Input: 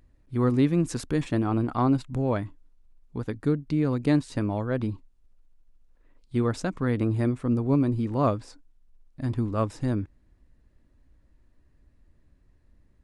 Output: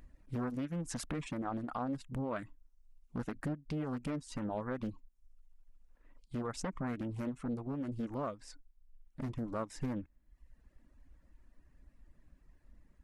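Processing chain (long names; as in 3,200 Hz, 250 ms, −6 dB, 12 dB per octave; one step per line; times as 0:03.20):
0:01.00–0:03.36: low-shelf EQ 160 Hz −3.5 dB
downward compressor 4 to 1, threshold −30 dBFS, peak gain reduction 11.5 dB
reverb reduction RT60 0.83 s
brickwall limiter −27 dBFS, peak gain reduction 7 dB
graphic EQ with 15 bands 100 Hz −11 dB, 400 Hz −6 dB, 4,000 Hz −5 dB
speech leveller 0.5 s
highs frequency-modulated by the lows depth 0.65 ms
level +2 dB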